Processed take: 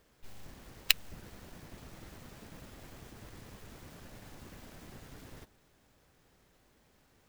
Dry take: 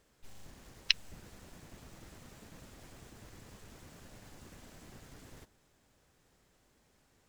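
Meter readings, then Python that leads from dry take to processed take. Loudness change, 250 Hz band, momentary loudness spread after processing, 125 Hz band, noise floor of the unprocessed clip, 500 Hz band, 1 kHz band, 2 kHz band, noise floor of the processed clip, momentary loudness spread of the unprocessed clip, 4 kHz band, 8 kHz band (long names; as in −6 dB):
−6.0 dB, +3.0 dB, 23 LU, +3.0 dB, −71 dBFS, +3.5 dB, +4.0 dB, +2.5 dB, −68 dBFS, 0 LU, +1.0 dB, +6.5 dB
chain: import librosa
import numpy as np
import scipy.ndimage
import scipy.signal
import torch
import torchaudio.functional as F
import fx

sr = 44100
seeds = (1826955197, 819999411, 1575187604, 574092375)

y = fx.clock_jitter(x, sr, seeds[0], jitter_ms=0.026)
y = y * 10.0 ** (3.0 / 20.0)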